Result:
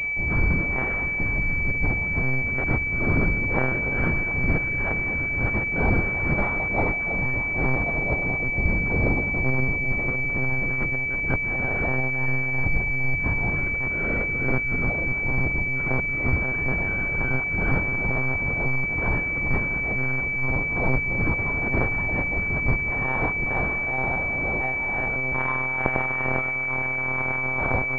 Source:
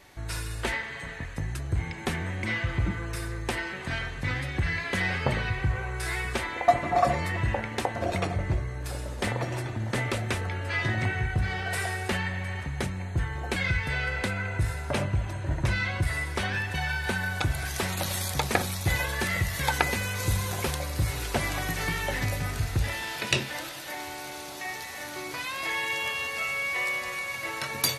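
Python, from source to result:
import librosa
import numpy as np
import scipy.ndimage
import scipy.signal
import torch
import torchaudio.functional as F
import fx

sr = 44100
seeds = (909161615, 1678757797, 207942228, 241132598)

y = scipy.signal.sosfilt(scipy.signal.butter(2, 61.0, 'highpass', fs=sr, output='sos'), x)
y = fx.low_shelf(y, sr, hz=190.0, db=5.0)
y = fx.over_compress(y, sr, threshold_db=-31.0, ratio=-0.5)
y = y * (1.0 - 0.61 / 2.0 + 0.61 / 2.0 * np.cos(2.0 * np.pi * 2.2 * (np.arange(len(y)) / sr)))
y = fx.echo_alternate(y, sr, ms=312, hz=820.0, feedback_pct=82, wet_db=-10.0)
y = fx.lpc_monotone(y, sr, seeds[0], pitch_hz=130.0, order=10)
y = fx.pwm(y, sr, carrier_hz=2300.0)
y = y * 10.0 ** (9.0 / 20.0)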